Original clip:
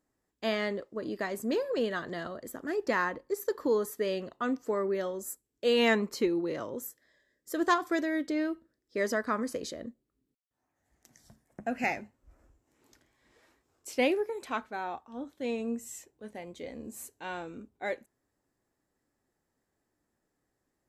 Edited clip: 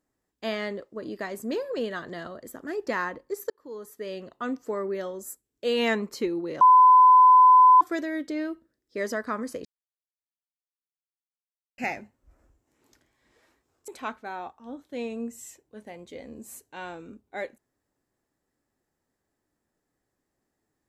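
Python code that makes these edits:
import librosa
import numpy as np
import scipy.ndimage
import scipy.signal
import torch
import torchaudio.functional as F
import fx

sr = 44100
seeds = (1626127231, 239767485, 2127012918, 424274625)

y = fx.edit(x, sr, fx.fade_in_span(start_s=3.5, length_s=0.95),
    fx.bleep(start_s=6.61, length_s=1.2, hz=1010.0, db=-11.0),
    fx.silence(start_s=9.65, length_s=2.13),
    fx.cut(start_s=13.88, length_s=0.48), tone=tone)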